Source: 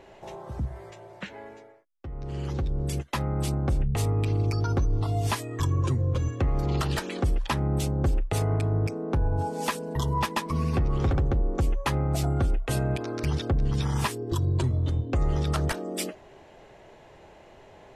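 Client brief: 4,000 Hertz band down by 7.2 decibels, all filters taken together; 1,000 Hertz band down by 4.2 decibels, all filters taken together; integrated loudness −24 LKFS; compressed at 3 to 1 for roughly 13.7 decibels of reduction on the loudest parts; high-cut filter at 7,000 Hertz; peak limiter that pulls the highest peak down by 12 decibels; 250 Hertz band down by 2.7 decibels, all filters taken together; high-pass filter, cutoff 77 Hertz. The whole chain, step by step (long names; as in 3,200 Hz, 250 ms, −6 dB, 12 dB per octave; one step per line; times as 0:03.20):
high-pass filter 77 Hz
low-pass filter 7,000 Hz
parametric band 250 Hz −4 dB
parametric band 1,000 Hz −4.5 dB
parametric band 4,000 Hz −9 dB
downward compressor 3 to 1, threshold −43 dBFS
level +24.5 dB
brickwall limiter −15.5 dBFS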